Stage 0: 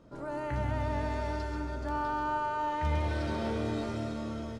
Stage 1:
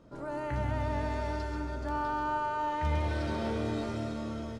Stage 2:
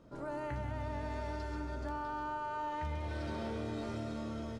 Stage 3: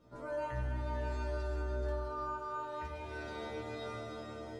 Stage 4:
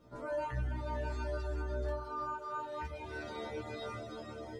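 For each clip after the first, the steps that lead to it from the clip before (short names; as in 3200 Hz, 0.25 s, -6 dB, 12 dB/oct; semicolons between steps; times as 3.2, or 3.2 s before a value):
nothing audible
compressor, threshold -33 dBFS, peak gain reduction 7.5 dB; gain -2 dB
metallic resonator 61 Hz, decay 0.8 s, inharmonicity 0.002; gain +10.5 dB
reverb removal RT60 0.84 s; gain +2.5 dB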